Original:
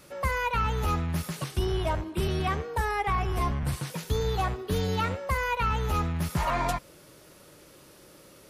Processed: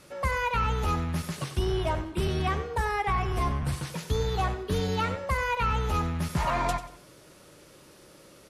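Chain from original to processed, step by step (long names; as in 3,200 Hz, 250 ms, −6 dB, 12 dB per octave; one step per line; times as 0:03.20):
low-pass filter 11,000 Hz 12 dB per octave
repeating echo 93 ms, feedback 33%, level −13 dB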